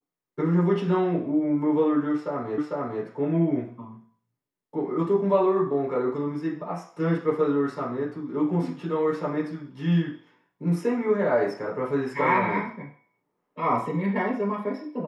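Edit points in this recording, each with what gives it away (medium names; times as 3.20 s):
2.58 s: repeat of the last 0.45 s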